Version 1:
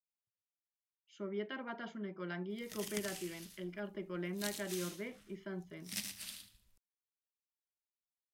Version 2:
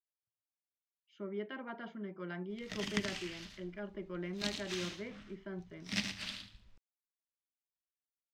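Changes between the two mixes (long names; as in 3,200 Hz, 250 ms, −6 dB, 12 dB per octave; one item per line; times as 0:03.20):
background +11.5 dB
master: add high-frequency loss of the air 180 metres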